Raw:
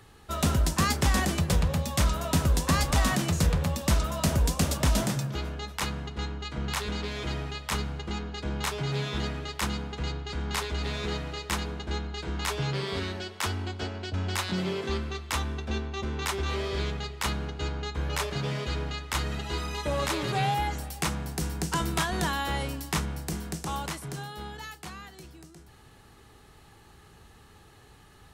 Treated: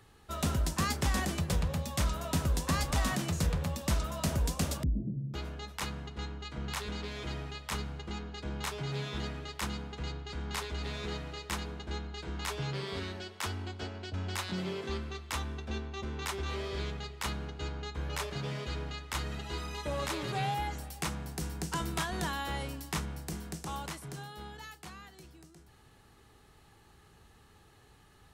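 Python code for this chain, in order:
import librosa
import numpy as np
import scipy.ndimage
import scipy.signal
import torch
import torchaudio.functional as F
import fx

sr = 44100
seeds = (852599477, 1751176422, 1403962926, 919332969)

y = fx.cheby2_lowpass(x, sr, hz=1500.0, order=4, stop_db=70, at=(4.83, 5.34))
y = y * 10.0 ** (-6.0 / 20.0)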